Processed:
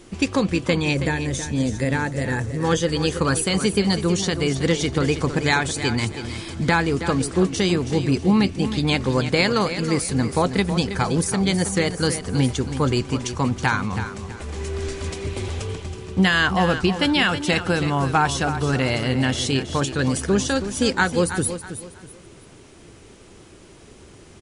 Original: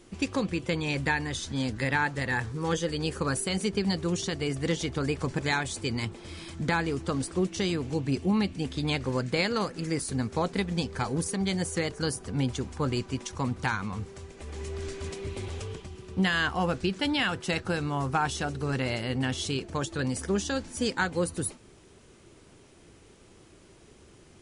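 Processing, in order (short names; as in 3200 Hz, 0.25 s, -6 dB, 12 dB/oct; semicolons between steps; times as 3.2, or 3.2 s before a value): spectral gain 0.94–2.63, 700–5400 Hz -8 dB; feedback echo 0.323 s, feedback 30%, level -10.5 dB; gain +8 dB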